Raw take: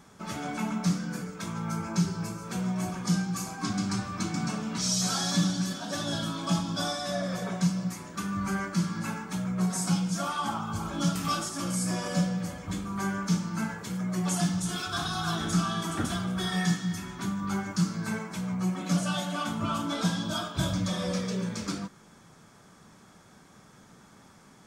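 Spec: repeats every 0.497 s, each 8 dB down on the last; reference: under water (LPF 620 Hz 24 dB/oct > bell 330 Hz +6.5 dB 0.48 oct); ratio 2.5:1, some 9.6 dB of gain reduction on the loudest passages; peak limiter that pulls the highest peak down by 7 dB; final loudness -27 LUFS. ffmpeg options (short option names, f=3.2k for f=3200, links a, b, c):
-af "acompressor=threshold=-36dB:ratio=2.5,alimiter=level_in=6dB:limit=-24dB:level=0:latency=1,volume=-6dB,lowpass=f=620:w=0.5412,lowpass=f=620:w=1.3066,equalizer=f=330:t=o:w=0.48:g=6.5,aecho=1:1:497|994|1491|1988|2485:0.398|0.159|0.0637|0.0255|0.0102,volume=12dB"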